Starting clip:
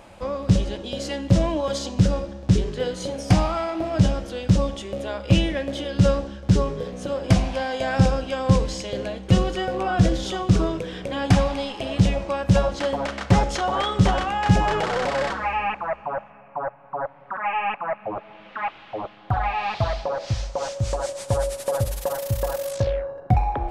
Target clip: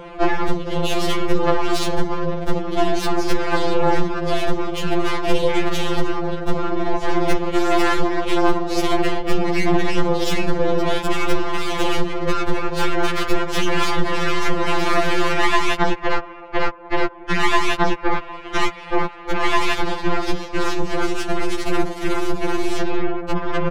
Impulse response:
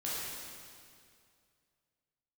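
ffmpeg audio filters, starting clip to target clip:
-af "highpass=f=84:w=0.5412,highpass=f=84:w=1.3066,equalizer=f=720:t=o:w=0.77:g=-4,acompressor=threshold=-29dB:ratio=5,aeval=exprs='val(0)*sin(2*PI*180*n/s)':c=same,adynamicsmooth=sensitivity=7.5:basefreq=2.1k,aresample=32000,aresample=44100,aeval=exprs='0.0944*(cos(1*acos(clip(val(0)/0.0944,-1,1)))-cos(1*PI/2))+0.0335*(cos(6*acos(clip(val(0)/0.0944,-1,1)))-cos(6*PI/2))':c=same,alimiter=level_in=23dB:limit=-1dB:release=50:level=0:latency=1,afftfilt=real='re*2.83*eq(mod(b,8),0)':imag='im*2.83*eq(mod(b,8),0)':win_size=2048:overlap=0.75,volume=-4dB"

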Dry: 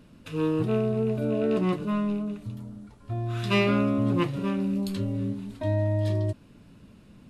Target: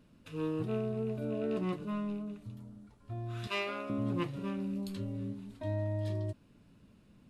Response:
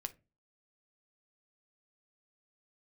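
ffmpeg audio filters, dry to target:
-filter_complex "[0:a]aeval=exprs='0.316*(cos(1*acos(clip(val(0)/0.316,-1,1)))-cos(1*PI/2))+0.0251*(cos(3*acos(clip(val(0)/0.316,-1,1)))-cos(3*PI/2))':c=same,asettb=1/sr,asplit=3[a][b][c];[a]atrim=end=3.474[d];[b]atrim=start=3.47:end=3.9,asetpts=PTS-STARTPTS,afade=t=in:d=0.004:c=qsin,afade=t=out:st=0.426:d=0.004:c=qsin,highpass=520[e];[c]atrim=start=3.896[f];[d][e]acrossfade=d=0.004:c1=hsin:c2=qsin[g];[g][f]acrossfade=d=0.004:c1=qsin:c2=hsin,volume=-7dB"

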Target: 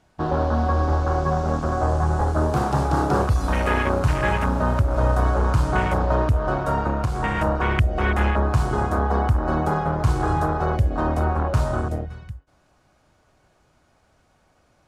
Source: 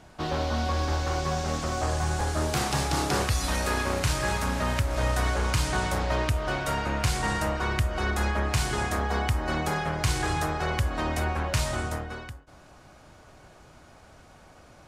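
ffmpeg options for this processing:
-filter_complex "[0:a]afwtdn=0.0355,asettb=1/sr,asplit=3[a][b][c];[a]atrim=end=6.894[d];[b]atrim=start=6.89:end=7.38,asetpts=PTS-STARTPTS,afade=t=in:d=0.004:c=qsin,afade=t=out:st=0.486:d=0.004:c=qsin,acompressor=threshold=-26dB:ratio=6[e];[c]atrim=start=7.376[f];[d][e]acrossfade=d=0.004:c1=hsin:c2=qsin[g];[g][f]acrossfade=d=0.004:c1=qsin:c2=hsin,volume=7dB"

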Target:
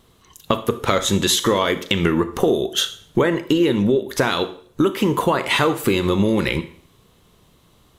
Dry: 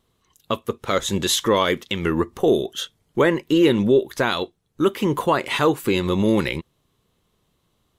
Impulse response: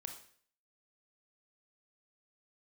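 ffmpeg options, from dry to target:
-filter_complex "[0:a]acompressor=threshold=-28dB:ratio=6,asplit=2[a][b];[1:a]atrim=start_sample=2205[c];[b][c]afir=irnorm=-1:irlink=0,volume=3.5dB[d];[a][d]amix=inputs=2:normalize=0,volume=7dB"

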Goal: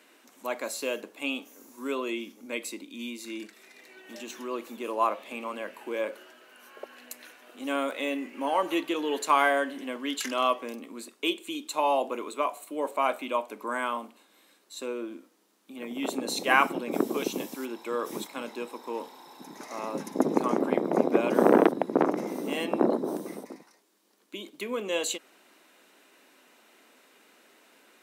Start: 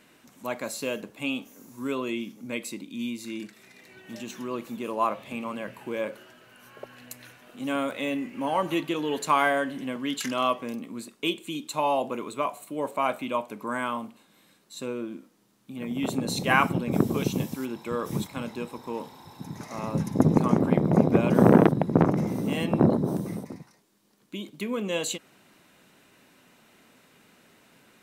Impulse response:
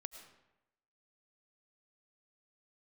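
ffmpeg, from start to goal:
-af "highpass=f=280:w=0.5412,highpass=f=280:w=1.3066"

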